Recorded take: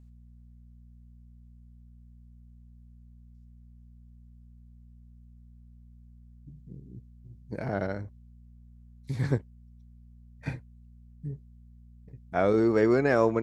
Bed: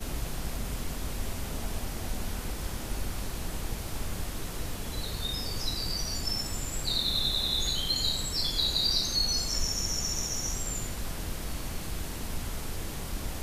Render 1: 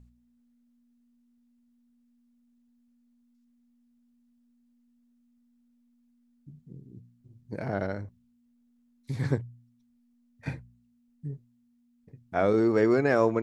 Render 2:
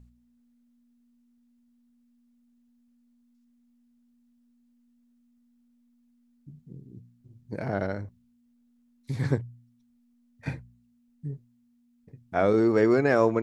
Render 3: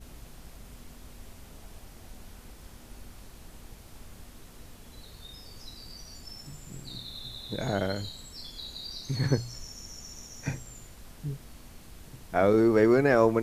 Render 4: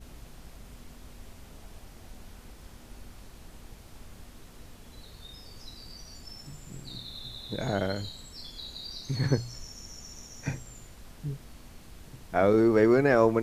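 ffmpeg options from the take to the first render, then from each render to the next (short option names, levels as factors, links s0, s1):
-af "bandreject=f=60:t=h:w=4,bandreject=f=120:t=h:w=4,bandreject=f=180:t=h:w=4"
-af "volume=1.19"
-filter_complex "[1:a]volume=0.211[s0];[0:a][s0]amix=inputs=2:normalize=0"
-af "equalizer=f=13000:w=0.5:g=-3.5"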